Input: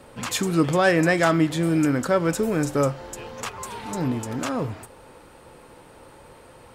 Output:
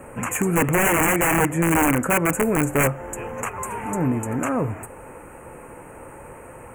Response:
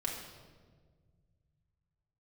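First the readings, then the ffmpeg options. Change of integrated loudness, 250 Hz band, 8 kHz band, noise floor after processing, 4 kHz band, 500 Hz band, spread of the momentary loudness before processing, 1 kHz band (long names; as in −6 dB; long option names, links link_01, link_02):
+1.5 dB, +0.5 dB, +7.0 dB, −42 dBFS, −4.5 dB, −0.5 dB, 15 LU, +4.0 dB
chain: -filter_complex "[0:a]asplit=2[link_01][link_02];[link_02]acompressor=threshold=-35dB:ratio=6,volume=-1dB[link_03];[link_01][link_03]amix=inputs=2:normalize=0,aeval=exprs='(mod(4.73*val(0)+1,2)-1)/4.73':channel_layout=same,acrusher=bits=11:mix=0:aa=0.000001,asuperstop=centerf=4300:order=8:qfactor=0.99,volume=1.5dB"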